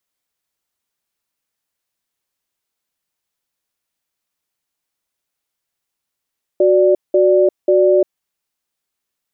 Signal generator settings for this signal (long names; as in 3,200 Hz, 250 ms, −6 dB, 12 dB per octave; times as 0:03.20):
tone pair in a cadence 369 Hz, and 587 Hz, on 0.35 s, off 0.19 s, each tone −11.5 dBFS 1.53 s